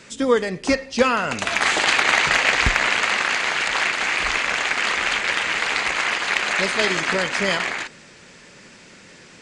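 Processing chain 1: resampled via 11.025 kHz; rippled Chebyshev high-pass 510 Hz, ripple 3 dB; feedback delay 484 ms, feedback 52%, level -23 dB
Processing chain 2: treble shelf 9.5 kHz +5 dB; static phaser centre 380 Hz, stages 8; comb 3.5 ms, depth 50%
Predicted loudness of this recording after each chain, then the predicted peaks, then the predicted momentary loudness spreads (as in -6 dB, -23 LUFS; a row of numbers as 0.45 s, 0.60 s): -20.5 LUFS, -24.5 LUFS; -3.0 dBFS, -7.5 dBFS; 9 LU, 5 LU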